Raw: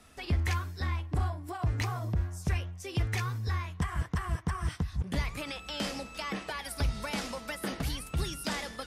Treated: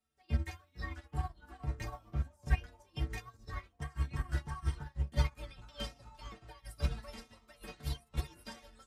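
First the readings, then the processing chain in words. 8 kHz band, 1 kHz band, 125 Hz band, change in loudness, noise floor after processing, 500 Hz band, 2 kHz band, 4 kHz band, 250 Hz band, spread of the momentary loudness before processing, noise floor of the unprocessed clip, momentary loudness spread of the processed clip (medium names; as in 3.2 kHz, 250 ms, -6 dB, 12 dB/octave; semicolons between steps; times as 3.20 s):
-12.5 dB, -9.5 dB, -6.0 dB, -6.0 dB, -71 dBFS, -9.5 dB, -9.5 dB, -10.0 dB, -10.0 dB, 5 LU, -47 dBFS, 15 LU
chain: inharmonic resonator 67 Hz, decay 0.45 s, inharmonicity 0.03; ever faster or slower copies 372 ms, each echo -4 st, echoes 3, each echo -6 dB; upward expansion 2.5:1, over -51 dBFS; trim +10 dB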